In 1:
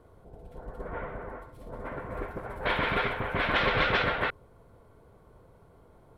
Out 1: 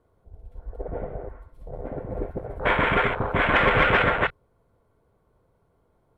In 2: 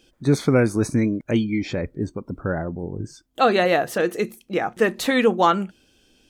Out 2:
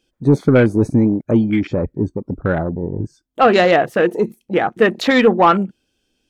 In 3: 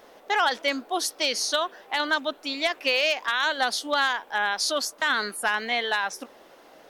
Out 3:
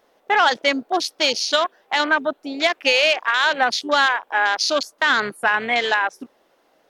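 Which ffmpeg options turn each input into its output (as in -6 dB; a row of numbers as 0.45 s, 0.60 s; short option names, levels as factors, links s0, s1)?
-af "afwtdn=0.0282,acontrast=81"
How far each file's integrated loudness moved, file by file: +6.5 LU, +5.5 LU, +6.0 LU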